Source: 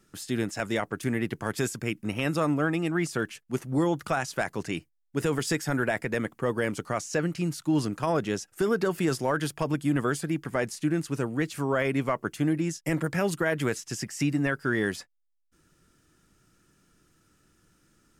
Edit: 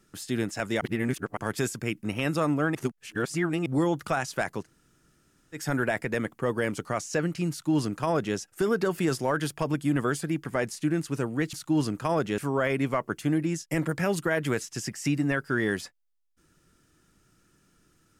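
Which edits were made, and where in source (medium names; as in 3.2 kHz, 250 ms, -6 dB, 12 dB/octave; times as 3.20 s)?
0.81–1.37 s: reverse
2.75–3.66 s: reverse
4.62–5.57 s: room tone, crossfade 0.10 s
7.51–8.36 s: copy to 11.53 s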